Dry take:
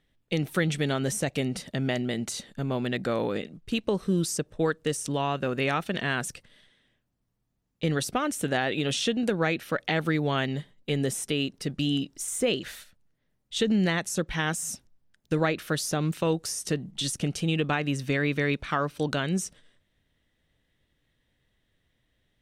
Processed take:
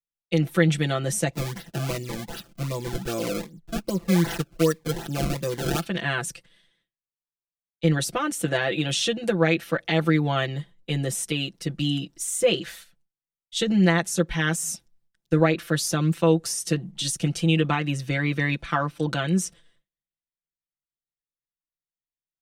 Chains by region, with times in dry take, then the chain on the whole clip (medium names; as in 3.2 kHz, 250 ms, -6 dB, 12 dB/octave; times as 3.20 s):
1.33–5.86 s: decimation with a swept rate 27×, swing 160% 2.6 Hz + Shepard-style phaser falling 1.5 Hz
whole clip: comb 5.9 ms, depth 95%; gate with hold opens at -52 dBFS; three bands expanded up and down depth 40%